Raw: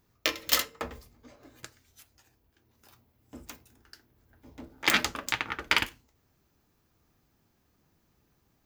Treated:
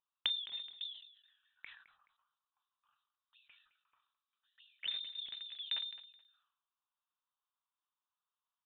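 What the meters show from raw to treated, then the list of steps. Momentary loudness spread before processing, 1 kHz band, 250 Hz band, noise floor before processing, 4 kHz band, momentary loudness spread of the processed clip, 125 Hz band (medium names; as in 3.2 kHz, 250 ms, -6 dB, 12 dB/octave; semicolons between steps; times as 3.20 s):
15 LU, -28.5 dB, under -30 dB, -72 dBFS, -6.0 dB, 19 LU, under -30 dB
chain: local Wiener filter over 25 samples; in parallel at +1 dB: compression 16:1, threshold -35 dBFS, peak gain reduction 17.5 dB; on the sum: auto-wah 290–3000 Hz, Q 13, down, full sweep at -27.5 dBFS; frequency inversion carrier 3.9 kHz; on a send: feedback delay 213 ms, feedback 25%, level -16 dB; on the sum: decay stretcher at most 82 dB/s; trim +3.5 dB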